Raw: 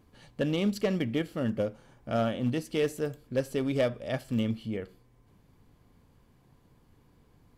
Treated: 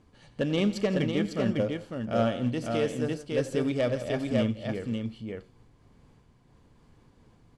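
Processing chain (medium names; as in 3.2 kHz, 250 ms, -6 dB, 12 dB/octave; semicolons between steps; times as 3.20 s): low-pass 9.3 kHz 24 dB/octave; on a send: multi-tap echo 91/165/552 ms -16.5/-16/-3.5 dB; on the sum: random flutter of the level, depth 55%; trim +3.5 dB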